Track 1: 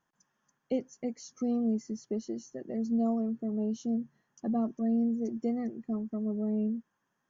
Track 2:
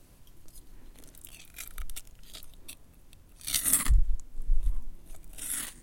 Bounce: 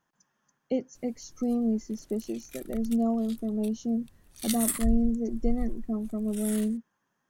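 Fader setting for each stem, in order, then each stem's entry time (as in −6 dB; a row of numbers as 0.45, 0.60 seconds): +2.5, −4.5 decibels; 0.00, 0.95 seconds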